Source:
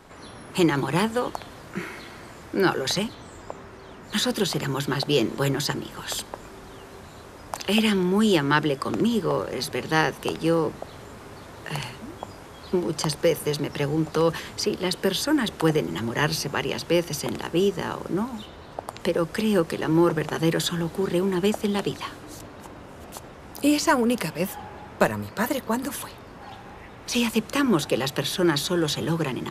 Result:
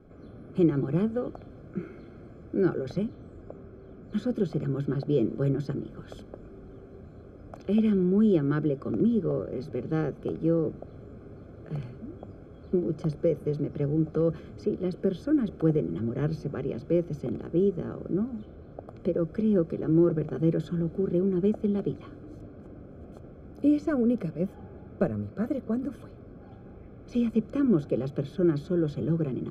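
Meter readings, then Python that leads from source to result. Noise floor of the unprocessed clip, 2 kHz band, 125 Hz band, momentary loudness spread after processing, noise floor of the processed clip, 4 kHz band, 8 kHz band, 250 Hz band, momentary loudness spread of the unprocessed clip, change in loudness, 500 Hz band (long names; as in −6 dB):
−44 dBFS, −18.0 dB, −0.5 dB, 21 LU, −48 dBFS, below −20 dB, below −25 dB, −1.0 dB, 20 LU, −3.5 dB, −3.5 dB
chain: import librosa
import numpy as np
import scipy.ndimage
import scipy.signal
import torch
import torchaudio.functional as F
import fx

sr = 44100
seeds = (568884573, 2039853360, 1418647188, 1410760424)

y = scipy.signal.lfilter(np.full(47, 1.0 / 47), 1.0, x)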